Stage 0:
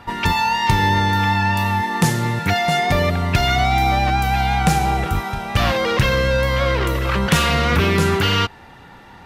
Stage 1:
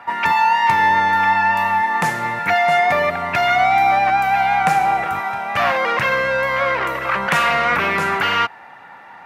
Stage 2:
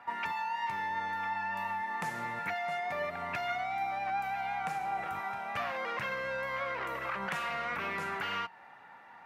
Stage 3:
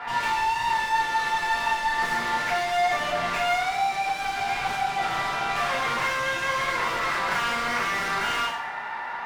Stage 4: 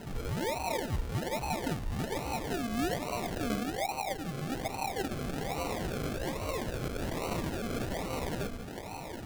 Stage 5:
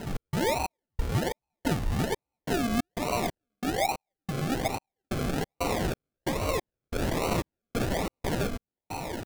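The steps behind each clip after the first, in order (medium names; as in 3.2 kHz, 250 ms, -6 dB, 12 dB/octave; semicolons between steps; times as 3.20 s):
high-pass 170 Hz 12 dB/octave; high-order bell 1.2 kHz +12 dB 2.4 oct; trim -7.5 dB
compression, threshold -19 dBFS, peak gain reduction 8.5 dB; flange 0.88 Hz, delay 4 ms, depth 1.5 ms, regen +87%; trim -8.5 dB
overdrive pedal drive 29 dB, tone 3.9 kHz, clips at -20.5 dBFS; two-slope reverb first 0.63 s, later 1.6 s, DRR -5 dB; trim -5 dB
decimation with a swept rate 37×, swing 60% 1.2 Hz; trim -8.5 dB
trance gate "x.xx..xx..xxx..x" 91 bpm -60 dB; trim +6.5 dB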